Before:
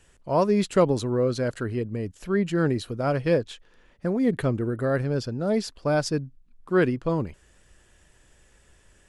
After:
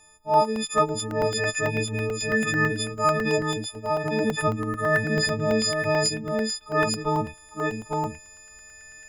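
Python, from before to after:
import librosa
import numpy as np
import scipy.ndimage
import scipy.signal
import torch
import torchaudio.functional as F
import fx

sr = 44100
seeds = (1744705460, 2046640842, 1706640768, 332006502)

p1 = fx.freq_snap(x, sr, grid_st=6)
p2 = fx.rider(p1, sr, range_db=4, speed_s=0.5)
p3 = fx.doubler(p2, sr, ms=32.0, db=-3.0, at=(5.16, 6.03), fade=0.02)
p4 = p3 + fx.echo_single(p3, sr, ms=853, db=-3.5, dry=0)
p5 = fx.buffer_crackle(p4, sr, first_s=0.34, period_s=0.11, block=64, kind='zero')
p6 = fx.bell_lfo(p5, sr, hz=0.26, low_hz=850.0, high_hz=2300.0, db=10)
y = p6 * librosa.db_to_amplitude(-3.5)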